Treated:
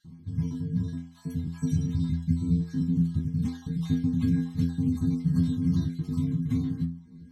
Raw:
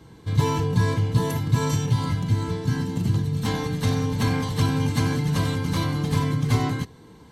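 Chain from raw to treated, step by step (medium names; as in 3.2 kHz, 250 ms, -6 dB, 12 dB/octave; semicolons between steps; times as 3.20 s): random holes in the spectrogram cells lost 38%; resonant low shelf 330 Hz +14 dB, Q 3; level rider; inharmonic resonator 82 Hz, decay 0.48 s, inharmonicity 0.008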